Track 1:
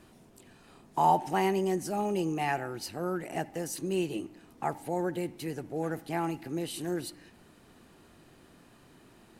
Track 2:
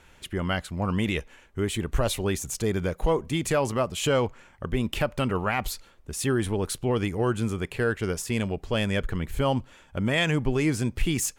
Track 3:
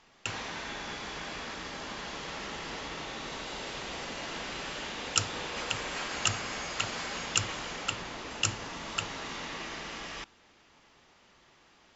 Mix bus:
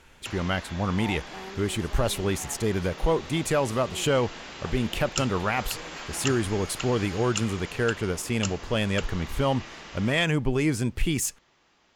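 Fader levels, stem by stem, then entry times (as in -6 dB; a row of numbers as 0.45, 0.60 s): -14.5, 0.0, -3.0 dB; 0.00, 0.00, 0.00 s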